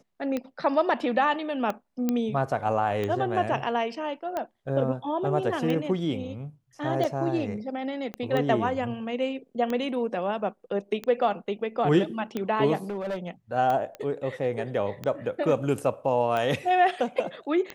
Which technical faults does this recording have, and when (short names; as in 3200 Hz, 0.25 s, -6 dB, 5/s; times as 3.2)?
tick 45 rpm -17 dBFS
2.09 pop -13 dBFS
8.14 pop -21 dBFS
12.9–13.28 clipped -27 dBFS
13.95 pop -24 dBFS